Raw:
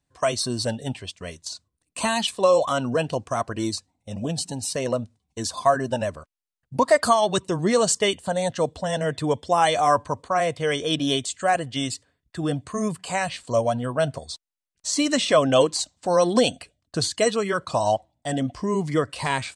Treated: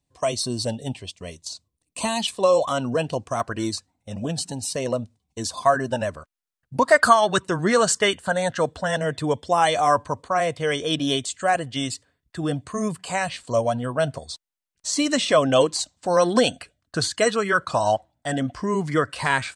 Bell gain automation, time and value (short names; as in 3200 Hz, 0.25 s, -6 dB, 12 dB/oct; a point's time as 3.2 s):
bell 1500 Hz 0.67 oct
-9.5 dB
from 2.26 s -2 dB
from 3.4 s +5.5 dB
from 4.52 s -3 dB
from 5.63 s +4 dB
from 6.92 s +12.5 dB
from 8.96 s +1.5 dB
from 16.17 s +9 dB